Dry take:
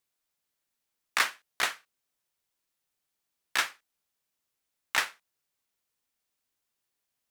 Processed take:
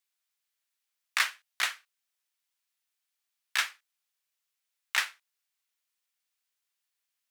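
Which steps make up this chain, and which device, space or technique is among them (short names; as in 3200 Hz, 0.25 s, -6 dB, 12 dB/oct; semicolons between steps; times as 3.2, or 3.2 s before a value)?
filter by subtraction (in parallel: LPF 2200 Hz 12 dB/oct + phase invert); on the sum: gain -1.5 dB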